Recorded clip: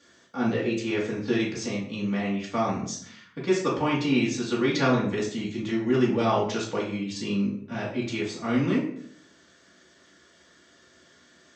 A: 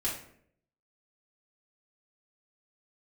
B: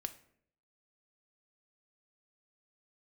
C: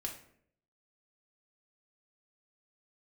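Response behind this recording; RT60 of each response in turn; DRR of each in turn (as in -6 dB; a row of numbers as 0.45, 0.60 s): A; 0.65, 0.65, 0.65 s; -6.5, 9.0, 0.5 dB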